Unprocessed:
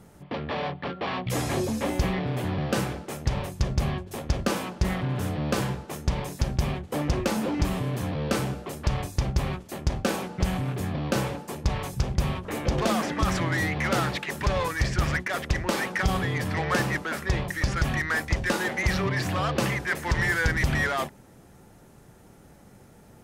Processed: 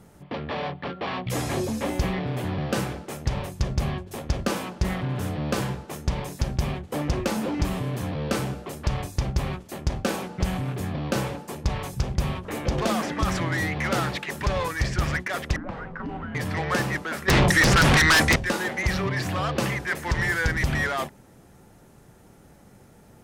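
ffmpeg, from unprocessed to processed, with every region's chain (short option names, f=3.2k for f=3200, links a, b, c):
-filter_complex "[0:a]asettb=1/sr,asplit=3[a][b][c];[a]atrim=end=15.564[d];[b]atrim=start=15.56:end=16.35,asetpts=PTS-STARTPTS,afade=t=in:d=0.004:c=qsin,afade=t=out:st=0.786:d=0.004:c=qsin,afreqshift=-350,acrossover=split=120|440[e][f][g];[e]acompressor=threshold=-39dB:ratio=4[h];[f]acompressor=threshold=-38dB:ratio=4[i];[g]acompressor=threshold=-32dB:ratio=4[j];[h][i][j]amix=inputs=3:normalize=0,lowpass=1.4k[k];[c]atrim=start=16.346[l];[d][k]acrossfade=d=0.004:c1=hsin:c2=qsin[m];[m][l]acrossfade=d=0.004:c1=qsin:c2=hsin,asettb=1/sr,asplit=3[n][o][p];[n]atrim=end=17.284[q];[o]atrim=start=17.28:end=18.36,asetpts=PTS-STARTPTS,afade=t=in:d=0.004:c=qsin,afade=t=out:st=1.076:d=0.004:c=qsin,lowpass=f=11k:w=0.5412,lowpass=f=11k:w=1.3066,aeval=exprs='0.2*sin(PI/2*3.98*val(0)/0.2)':c=same[r];[p]atrim=start=18.356[s];[q][r]acrossfade=d=0.004:c1=hsin:c2=qsin[t];[t][s]acrossfade=d=0.004:c1=qsin:c2=hsin"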